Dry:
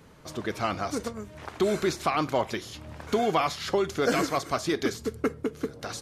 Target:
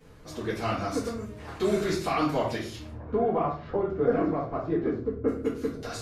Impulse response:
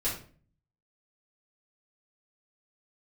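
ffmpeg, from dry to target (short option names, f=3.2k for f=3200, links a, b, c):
-filter_complex "[0:a]asettb=1/sr,asplit=3[a][b][c];[a]atrim=end=2.904[d];[b]atrim=start=2.9:end=5.28,asetpts=PTS-STARTPTS,afade=t=in:d=0.004:c=qsin,afade=t=out:st=2.376:d=0.004:c=qsin,lowpass=1k[e];[c]atrim=start=5.276[f];[d][e]acrossfade=d=0.004:c1=hsin:c2=qsin[g];[g][f]acrossfade=d=0.004:c1=qsin:c2=hsin[h];[1:a]atrim=start_sample=2205[i];[h][i]afir=irnorm=-1:irlink=0,volume=-7dB"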